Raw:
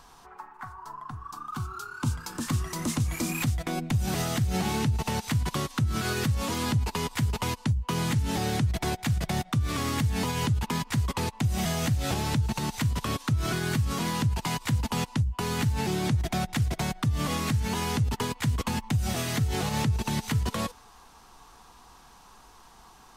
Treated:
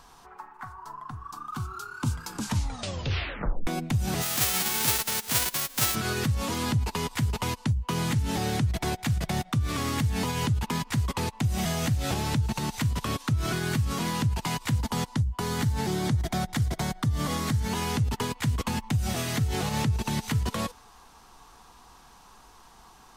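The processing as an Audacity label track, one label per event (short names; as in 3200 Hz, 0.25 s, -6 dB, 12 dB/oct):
2.310000	2.310000	tape stop 1.36 s
4.210000	5.940000	spectral whitening exponent 0.1
14.790000	17.710000	bell 2600 Hz -7.5 dB 0.24 oct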